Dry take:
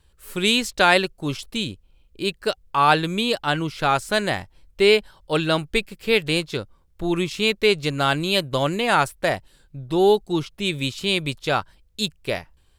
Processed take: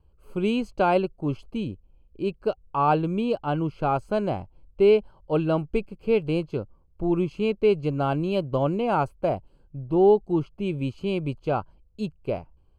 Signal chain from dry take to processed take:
moving average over 24 samples

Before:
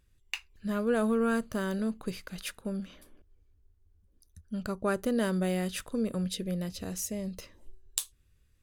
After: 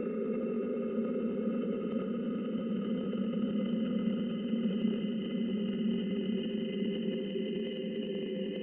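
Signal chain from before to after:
three sine waves on the formant tracks
extreme stretch with random phases 33×, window 0.50 s, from 0:06.13
transient designer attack +2 dB, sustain +7 dB
level −1.5 dB

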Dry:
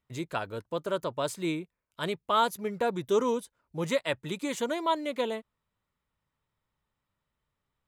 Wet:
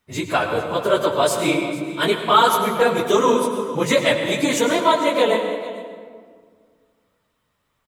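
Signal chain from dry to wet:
random phases in long frames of 50 ms
low-shelf EQ 260 Hz −8.5 dB
in parallel at −0.5 dB: brickwall limiter −22 dBFS, peak gain reduction 8 dB
on the sum: single-tap delay 450 ms −17.5 dB
convolution reverb RT60 1.9 s, pre-delay 89 ms, DRR 5.5 dB
level +8 dB

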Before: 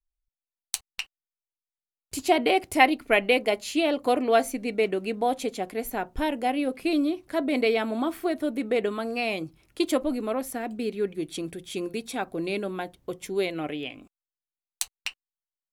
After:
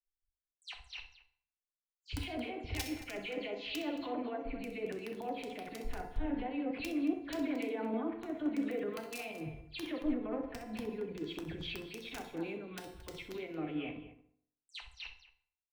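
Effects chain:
every frequency bin delayed by itself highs early, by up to 124 ms
low-shelf EQ 91 Hz +7.5 dB
output level in coarse steps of 15 dB
low-pass filter 3,400 Hz 24 dB per octave
parametric band 63 Hz +2.5 dB 1.5 octaves
downward compressor 8 to 1, threshold −35 dBFS, peak gain reduction 19.5 dB
wrap-around overflow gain 27.5 dB
tuned comb filter 340 Hz, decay 1 s, mix 60%
brickwall limiter −47 dBFS, peak gain reduction 12.5 dB
loudspeakers that aren't time-aligned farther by 22 metres −11 dB, 77 metres −11 dB
feedback delay network reverb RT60 1.1 s, low-frequency decay 1×, high-frequency decay 0.55×, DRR 5.5 dB
multiband upward and downward expander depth 100%
level +13.5 dB

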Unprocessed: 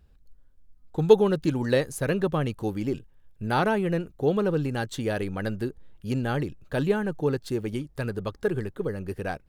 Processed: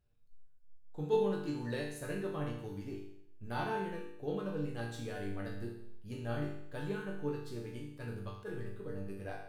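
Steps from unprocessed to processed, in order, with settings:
resonators tuned to a chord G2 minor, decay 0.73 s
level that may rise only so fast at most 310 dB per second
level +5 dB

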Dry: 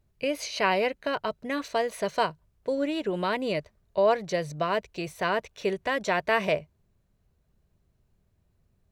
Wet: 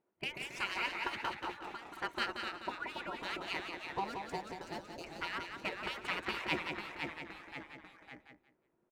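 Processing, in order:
adaptive Wiener filter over 9 samples
mains-hum notches 60/120/180 Hz
gate on every frequency bin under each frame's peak −15 dB weak
0:04.04–0:05.04: flat-topped bell 1,700 Hz −12 dB 2.4 octaves
harmonic and percussive parts rebalanced harmonic −16 dB
high-shelf EQ 3,100 Hz −8 dB
0:01.36–0:01.92: downward compressor 6 to 1, threshold −51 dBFS, peak gain reduction 13 dB
hollow resonant body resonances 360/960/1,400 Hz, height 10 dB, ringing for 100 ms
delay with pitch and tempo change per echo 123 ms, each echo −1 semitone, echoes 3, each echo −6 dB
repeating echo 179 ms, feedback 21%, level −6.5 dB
level +3.5 dB

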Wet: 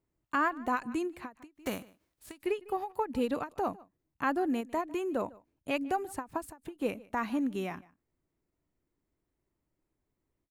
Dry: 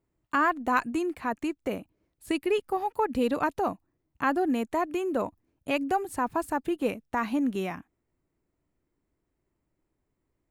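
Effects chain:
0:01.54–0:02.41: spectral envelope flattened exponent 0.6
slap from a distant wall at 26 metres, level −22 dB
every ending faded ahead of time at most 280 dB per second
level −4 dB

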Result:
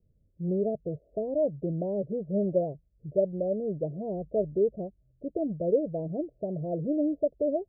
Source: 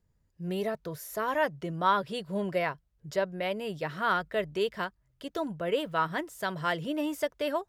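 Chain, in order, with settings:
Butterworth low-pass 650 Hz 72 dB per octave
level +4.5 dB

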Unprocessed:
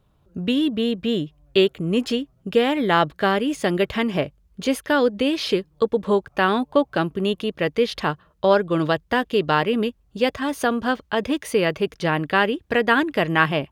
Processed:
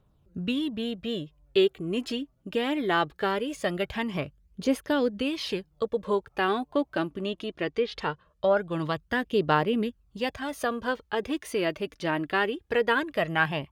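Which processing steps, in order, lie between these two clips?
phase shifter 0.21 Hz, delay 3.5 ms, feedback 44%
0:07.06–0:08.57: treble cut that deepens with the level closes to 1,800 Hz, closed at −11.5 dBFS
level −7.5 dB

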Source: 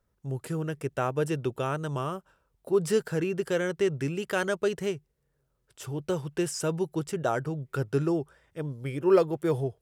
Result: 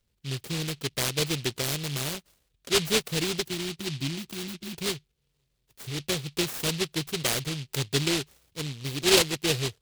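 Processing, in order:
time-frequency box erased 0:03.43–0:04.78, 370–2,900 Hz
short delay modulated by noise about 3,300 Hz, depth 0.36 ms

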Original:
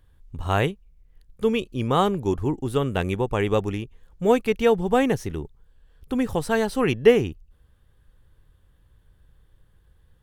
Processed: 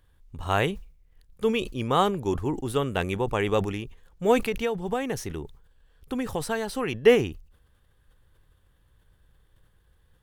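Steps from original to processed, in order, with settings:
0:04.42–0:07.06: downward compressor 5 to 1, threshold −22 dBFS, peak gain reduction 8.5 dB
low-shelf EQ 400 Hz −5.5 dB
level that may fall only so fast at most 110 dB per second

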